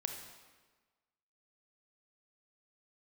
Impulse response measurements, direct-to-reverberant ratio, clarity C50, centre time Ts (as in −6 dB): 4.0 dB, 5.0 dB, 36 ms